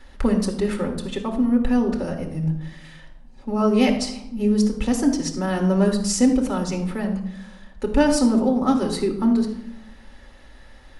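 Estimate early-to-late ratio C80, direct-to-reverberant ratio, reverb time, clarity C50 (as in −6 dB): 11.0 dB, 1.5 dB, 0.80 s, 8.0 dB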